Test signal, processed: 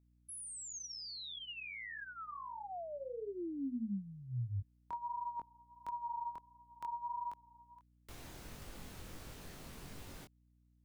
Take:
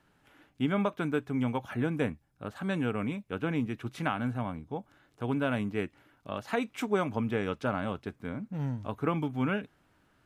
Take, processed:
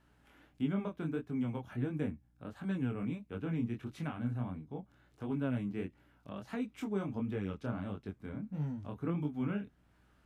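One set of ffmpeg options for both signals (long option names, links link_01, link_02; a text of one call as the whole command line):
ffmpeg -i in.wav -filter_complex "[0:a]acrossover=split=350[link_01][link_02];[link_02]acompressor=threshold=-58dB:ratio=1.5[link_03];[link_01][link_03]amix=inputs=2:normalize=0,flanger=delay=19.5:depth=6.2:speed=1.5,aeval=exprs='val(0)+0.000355*(sin(2*PI*60*n/s)+sin(2*PI*2*60*n/s)/2+sin(2*PI*3*60*n/s)/3+sin(2*PI*4*60*n/s)/4+sin(2*PI*5*60*n/s)/5)':channel_layout=same" out.wav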